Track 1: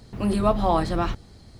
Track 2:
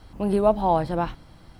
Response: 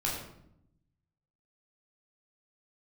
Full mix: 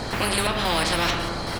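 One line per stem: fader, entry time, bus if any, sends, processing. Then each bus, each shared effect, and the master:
−1.0 dB, 0.00 s, send −9 dB, high-shelf EQ 3,200 Hz −12 dB; downward compressor 2.5 to 1, threshold −28 dBFS, peak gain reduction 8.5 dB
−2.0 dB, 12 ms, no send, Butterworth high-pass 280 Hz; gate pattern ".xx.x..xx" 165 BPM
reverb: on, RT60 0.75 s, pre-delay 12 ms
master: every bin compressed towards the loudest bin 4 to 1

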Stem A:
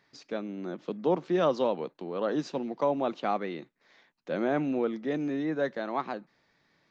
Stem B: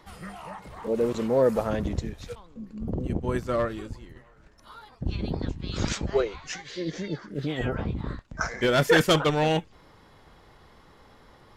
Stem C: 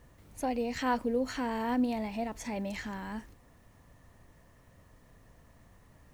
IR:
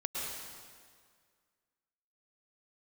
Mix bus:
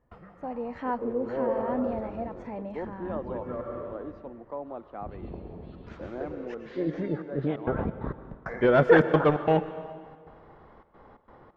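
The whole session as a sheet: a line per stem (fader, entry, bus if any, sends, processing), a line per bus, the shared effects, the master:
−9.0 dB, 1.70 s, send −20.5 dB, no processing
+3.0 dB, 0.00 s, send −12.5 dB, gate pattern ".xx.xx.x.x.xxxxx" 133 BPM −60 dB; automatic ducking −24 dB, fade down 0.20 s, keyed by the third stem
−8.0 dB, 0.00 s, send −22.5 dB, automatic gain control gain up to 9 dB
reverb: on, RT60 1.9 s, pre-delay 98 ms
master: low-pass filter 1,200 Hz 12 dB per octave; low-shelf EQ 220 Hz −7 dB

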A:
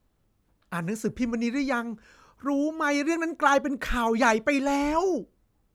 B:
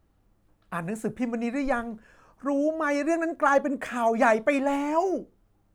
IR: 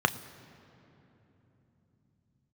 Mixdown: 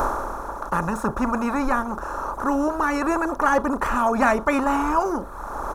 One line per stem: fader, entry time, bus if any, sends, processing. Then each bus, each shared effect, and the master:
−2.5 dB, 0.00 s, no send, compressor on every frequency bin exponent 0.2; drawn EQ curve 100 Hz 0 dB, 160 Hz −10 dB, 1,200 Hz +10 dB, 2,300 Hz −17 dB, 11,000 Hz +7 dB; reverb reduction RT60 1.2 s; automatic ducking −8 dB, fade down 0.50 s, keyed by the second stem
+1.5 dB, 0.6 ms, no send, no processing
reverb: not used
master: low-shelf EQ 140 Hz +8 dB

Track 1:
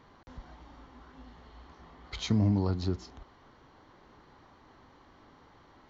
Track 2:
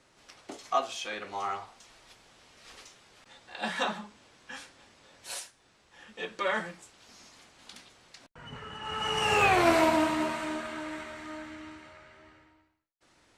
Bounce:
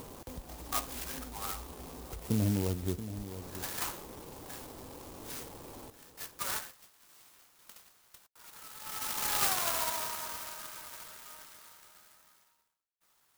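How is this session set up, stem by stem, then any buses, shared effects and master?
−4.0 dB, 0.00 s, no send, echo send −12 dB, Bessel low-pass filter 1,400 Hz, order 8; upward compression, threshold −32 dBFS
−3.5 dB, 0.00 s, no send, no echo send, high-pass filter 1,000 Hz 24 dB per octave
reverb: not used
echo: single-tap delay 680 ms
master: parametric band 490 Hz +6 dB 0.66 octaves; converter with an unsteady clock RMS 0.14 ms

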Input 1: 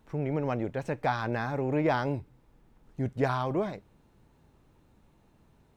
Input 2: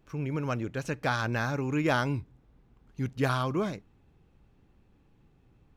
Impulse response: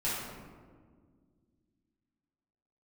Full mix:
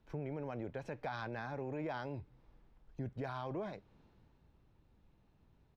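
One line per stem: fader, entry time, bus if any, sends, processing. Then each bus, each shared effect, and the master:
+3.0 dB, 0.00 s, no send, low-pass filter 5,400 Hz 24 dB per octave; brickwall limiter −23.5 dBFS, peak gain reduction 9 dB; multiband upward and downward expander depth 40%
−14.5 dB, 1.2 ms, no send, brickwall limiter −22.5 dBFS, peak gain reduction 8.5 dB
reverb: not used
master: downward compressor 2 to 1, threshold −47 dBFS, peak gain reduction 12.5 dB

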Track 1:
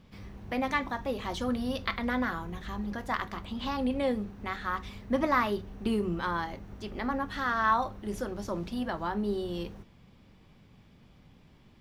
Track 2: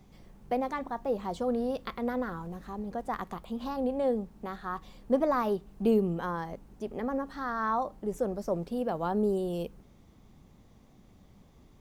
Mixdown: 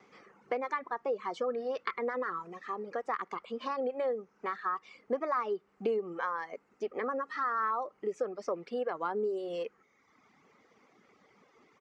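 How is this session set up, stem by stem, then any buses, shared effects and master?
−17.0 dB, 0.00 s, no send, parametric band 1,000 Hz +11 dB 2.8 octaves; downward compressor, threshold −22 dBFS, peak gain reduction 12 dB
+2.5 dB, 1.9 ms, no send, no processing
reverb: not used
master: reverb reduction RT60 1.1 s; loudspeaker in its box 380–6,200 Hz, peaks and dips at 450 Hz +6 dB, 640 Hz −4 dB, 1,300 Hz +9 dB, 2,100 Hz +9 dB, 3,700 Hz −6 dB; downward compressor 3 to 1, threshold −31 dBFS, peak gain reduction 10.5 dB

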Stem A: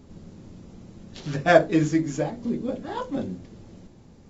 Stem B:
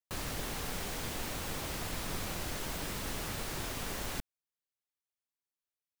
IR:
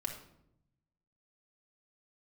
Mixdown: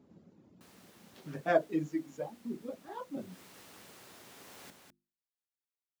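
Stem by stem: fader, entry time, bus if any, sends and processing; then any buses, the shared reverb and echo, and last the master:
−10.0 dB, 0.00 s, no send, no echo send, reverb reduction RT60 2 s; high-shelf EQ 2,800 Hz −11.5 dB
0:03.12 −17.5 dB → 0:03.39 −8.5 dB, 0.50 s, no send, echo send −10.5 dB, mains-hum notches 50/100/150/200/250/300/350 Hz; automatic ducking −8 dB, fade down 1.75 s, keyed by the first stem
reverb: not used
echo: single-tap delay 202 ms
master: high-pass filter 170 Hz 12 dB per octave

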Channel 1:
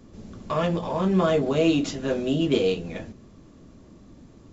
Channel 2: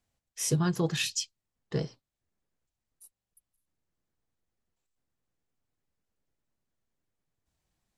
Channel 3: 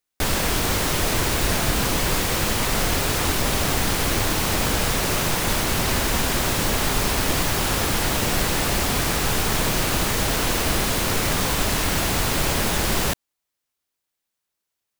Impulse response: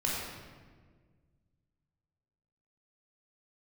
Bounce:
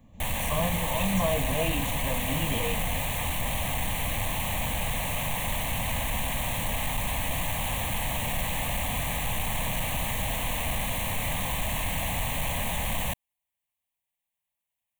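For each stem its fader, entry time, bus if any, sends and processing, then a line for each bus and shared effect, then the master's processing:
−2.5 dB, 0.00 s, no send, no processing
−4.5 dB, 0.00 s, no send, no processing
−2.5 dB, 0.00 s, no send, soft clipping −18.5 dBFS, distortion −14 dB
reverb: not used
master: phaser with its sweep stopped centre 1,400 Hz, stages 6

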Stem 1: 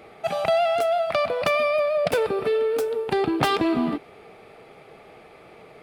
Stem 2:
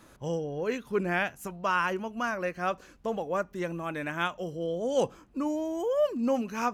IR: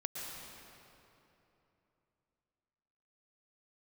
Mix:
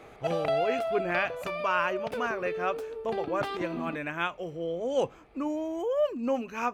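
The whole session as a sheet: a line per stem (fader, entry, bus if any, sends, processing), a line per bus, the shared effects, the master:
−3.5 dB, 0.00 s, no send, automatic ducking −9 dB, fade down 1.50 s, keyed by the second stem
−0.5 dB, 0.00 s, no send, thirty-one-band graphic EQ 200 Hz −10 dB, 2,500 Hz +5 dB, 5,000 Hz −5 dB, 10,000 Hz −5 dB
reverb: not used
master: high-shelf EQ 5,400 Hz −7 dB

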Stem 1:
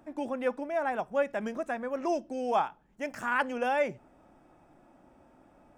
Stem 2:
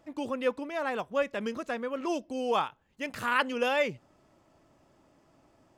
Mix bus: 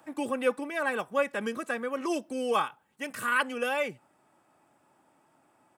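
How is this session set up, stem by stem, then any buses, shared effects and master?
+0.5 dB, 0.00 s, no send, Butterworth high-pass 770 Hz 72 dB per octave
−1.0 dB, 3.3 ms, polarity flipped, no send, high shelf with overshoot 7,300 Hz +6.5 dB, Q 3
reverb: not used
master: high-pass filter 150 Hz 12 dB per octave; speech leveller 2 s

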